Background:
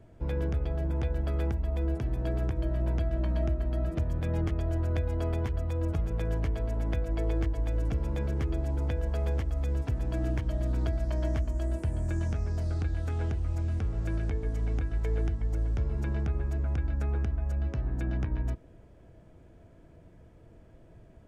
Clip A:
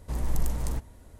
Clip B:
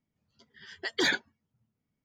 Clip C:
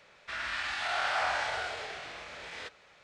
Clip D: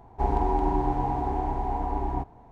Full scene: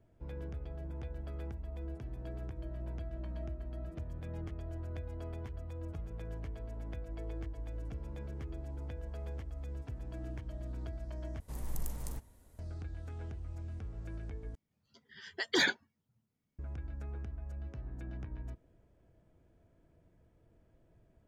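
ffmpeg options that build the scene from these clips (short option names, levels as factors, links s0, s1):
-filter_complex "[0:a]volume=0.237[s0];[1:a]highshelf=f=9000:g=10[s1];[s0]asplit=3[s2][s3][s4];[s2]atrim=end=11.404[s5];[s1]atrim=end=1.19,asetpts=PTS-STARTPTS,volume=0.282[s6];[s3]atrim=start=12.586:end=14.554[s7];[2:a]atrim=end=2.04,asetpts=PTS-STARTPTS,volume=0.794[s8];[s4]atrim=start=16.586[s9];[s5][s6]acrossfade=d=0.004:c1=hsin:c2=hsin[s10];[s10][s7]acrossfade=d=0.004:c1=hsin:c2=hsin[s11];[s11][s8]acrossfade=d=0.004:c1=hsin:c2=hsin[s12];[s12][s9]acrossfade=d=0.004:c1=hsin:c2=hsin"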